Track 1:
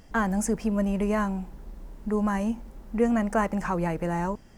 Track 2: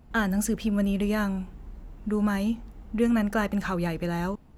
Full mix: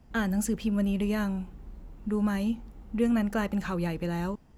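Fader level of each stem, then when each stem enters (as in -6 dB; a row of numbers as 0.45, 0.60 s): -14.5, -3.5 dB; 0.00, 0.00 s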